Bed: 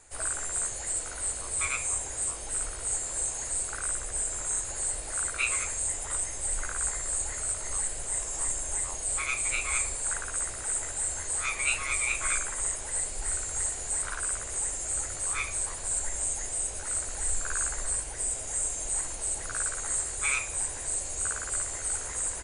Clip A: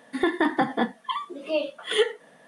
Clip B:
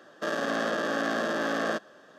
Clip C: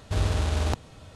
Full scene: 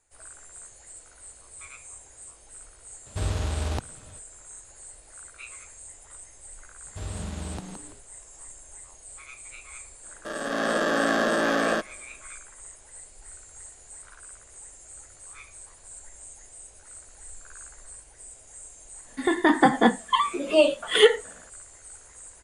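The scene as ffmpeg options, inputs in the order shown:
-filter_complex "[3:a]asplit=2[a][b];[0:a]volume=-14.5dB[c];[b]asplit=5[d][e][f][g][h];[e]adelay=167,afreqshift=110,volume=-6dB[i];[f]adelay=334,afreqshift=220,volume=-15.9dB[j];[g]adelay=501,afreqshift=330,volume=-25.8dB[k];[h]adelay=668,afreqshift=440,volume=-35.7dB[l];[d][i][j][k][l]amix=inputs=5:normalize=0[m];[2:a]dynaudnorm=f=120:g=9:m=11.5dB[n];[1:a]dynaudnorm=f=160:g=5:m=11.5dB[o];[a]atrim=end=1.15,asetpts=PTS-STARTPTS,volume=-3dB,afade=t=in:d=0.02,afade=t=out:st=1.13:d=0.02,adelay=134505S[p];[m]atrim=end=1.15,asetpts=PTS-STARTPTS,volume=-10.5dB,afade=t=in:d=0.004:c=hsin,afade=t=out:st=1.146:d=0.004:c=hsin,adelay=6850[q];[n]atrim=end=2.18,asetpts=PTS-STARTPTS,volume=-6dB,afade=t=in:d=0.004:c=hsin,afade=t=out:st=2.176:d=0.004:c=hsin,adelay=10030[r];[o]atrim=end=2.47,asetpts=PTS-STARTPTS,volume=-2.5dB,afade=t=in:d=0.05,afade=t=out:st=2.42:d=0.05,adelay=19040[s];[c][p][q][r][s]amix=inputs=5:normalize=0"

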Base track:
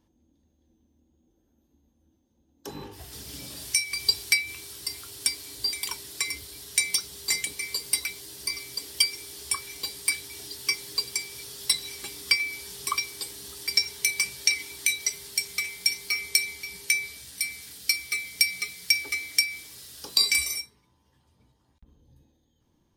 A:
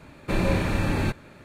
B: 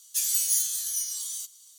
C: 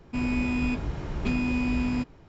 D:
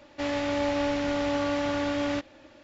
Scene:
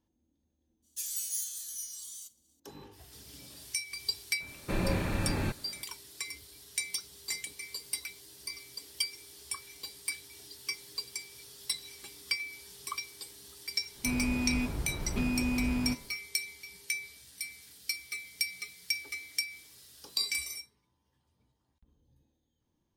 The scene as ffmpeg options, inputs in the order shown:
-filter_complex "[0:a]volume=-10dB[a];[2:a]agate=range=-33dB:threshold=-48dB:ratio=3:release=100:detection=peak[b];[3:a]bandreject=f=76.11:t=h:w=4,bandreject=f=152.22:t=h:w=4,bandreject=f=228.33:t=h:w=4,bandreject=f=304.44:t=h:w=4,bandreject=f=380.55:t=h:w=4,bandreject=f=456.66:t=h:w=4,bandreject=f=532.77:t=h:w=4,bandreject=f=608.88:t=h:w=4,bandreject=f=684.99:t=h:w=4,bandreject=f=761.1:t=h:w=4,bandreject=f=837.21:t=h:w=4,bandreject=f=913.32:t=h:w=4,bandreject=f=989.43:t=h:w=4,bandreject=f=1.06554k:t=h:w=4,bandreject=f=1.14165k:t=h:w=4,bandreject=f=1.21776k:t=h:w=4,bandreject=f=1.29387k:t=h:w=4,bandreject=f=1.36998k:t=h:w=4,bandreject=f=1.44609k:t=h:w=4,bandreject=f=1.5222k:t=h:w=4,bandreject=f=1.59831k:t=h:w=4,bandreject=f=1.67442k:t=h:w=4,bandreject=f=1.75053k:t=h:w=4,bandreject=f=1.82664k:t=h:w=4,bandreject=f=1.90275k:t=h:w=4,bandreject=f=1.97886k:t=h:w=4,bandreject=f=2.05497k:t=h:w=4,bandreject=f=2.13108k:t=h:w=4,bandreject=f=2.20719k:t=h:w=4,bandreject=f=2.2833k:t=h:w=4,bandreject=f=2.35941k:t=h:w=4,bandreject=f=2.43552k:t=h:w=4,bandreject=f=2.51163k:t=h:w=4,bandreject=f=2.58774k:t=h:w=4,bandreject=f=2.66385k:t=h:w=4,bandreject=f=2.73996k:t=h:w=4,bandreject=f=2.81607k:t=h:w=4,bandreject=f=2.89218k:t=h:w=4,bandreject=f=2.96829k:t=h:w=4,bandreject=f=3.0444k:t=h:w=4[c];[b]atrim=end=1.78,asetpts=PTS-STARTPTS,volume=-10.5dB,afade=t=in:d=0.004:c=hsin,afade=t=out:st=1.776:d=0.004:c=hsin,adelay=820[d];[1:a]atrim=end=1.44,asetpts=PTS-STARTPTS,volume=-7dB,afade=t=in:d=0.004:c=hsin,afade=t=out:st=1.436:d=0.004:c=hsin,adelay=4400[e];[c]atrim=end=2.28,asetpts=PTS-STARTPTS,volume=-4dB,afade=t=in:d=0.1,afade=t=out:st=2.18:d=0.1,adelay=13910[f];[a][d][e][f]amix=inputs=4:normalize=0"

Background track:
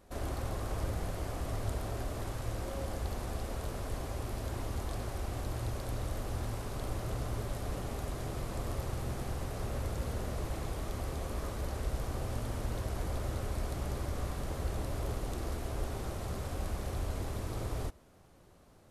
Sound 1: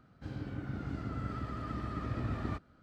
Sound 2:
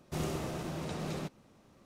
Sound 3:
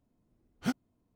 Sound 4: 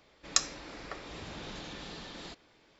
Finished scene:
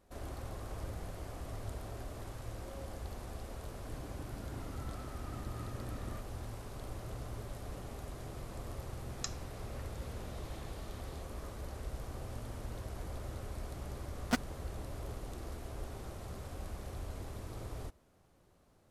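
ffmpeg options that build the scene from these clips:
-filter_complex "[0:a]volume=-7dB[a];[3:a]acrusher=bits=3:mix=0:aa=0.5[b];[1:a]atrim=end=2.82,asetpts=PTS-STARTPTS,volume=-9.5dB,afade=t=in:d=0.004:c=hsin,afade=t=out:st=2.816:d=0.004:c=hsin,adelay=3630[c];[4:a]atrim=end=2.79,asetpts=PTS-STARTPTS,volume=-14dB,afade=t=in:d=0.004:c=hsin,afade=t=out:st=2.786:d=0.004:c=hsin,adelay=8880[d];[b]atrim=end=1.15,asetpts=PTS-STARTPTS,afade=t=in:d=0.004:c=hsin,afade=t=out:st=1.146:d=0.004:c=hsin,adelay=13650[e];[a][c][d][e]amix=inputs=4:normalize=0"

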